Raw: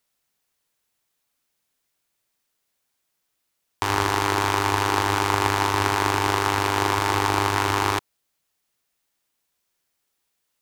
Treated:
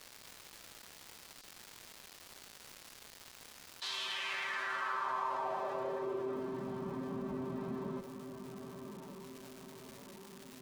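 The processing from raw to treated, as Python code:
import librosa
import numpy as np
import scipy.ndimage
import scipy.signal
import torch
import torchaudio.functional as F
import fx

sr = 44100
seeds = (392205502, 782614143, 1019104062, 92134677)

y = fx.lower_of_two(x, sr, delay_ms=6.7)
y = fx.high_shelf(y, sr, hz=2800.0, db=6.0)
y = 10.0 ** (-25.5 / 20.0) * np.tanh(y / 10.0 ** (-25.5 / 20.0))
y = fx.notch(y, sr, hz=2200.0, q=12.0)
y = fx.doubler(y, sr, ms=14.0, db=-4.0)
y = fx.echo_diffused(y, sr, ms=1112, feedback_pct=43, wet_db=-14.5)
y = fx.pitch_keep_formants(y, sr, semitones=4.5)
y = fx.filter_sweep_bandpass(y, sr, from_hz=4500.0, to_hz=230.0, start_s=3.71, end_s=6.67, q=3.0)
y = fx.dmg_crackle(y, sr, seeds[0], per_s=520.0, level_db=-57.0)
y = fx.env_flatten(y, sr, amount_pct=50)
y = y * librosa.db_to_amplitude(-1.5)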